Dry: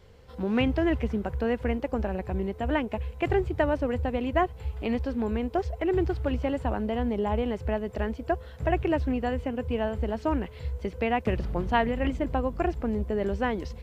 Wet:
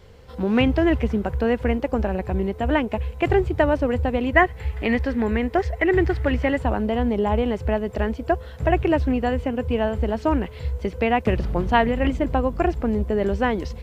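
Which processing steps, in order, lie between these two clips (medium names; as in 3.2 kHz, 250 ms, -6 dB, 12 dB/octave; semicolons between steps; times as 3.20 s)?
4.33–6.58 s: peaking EQ 1.9 kHz +12.5 dB 0.47 oct; trim +6 dB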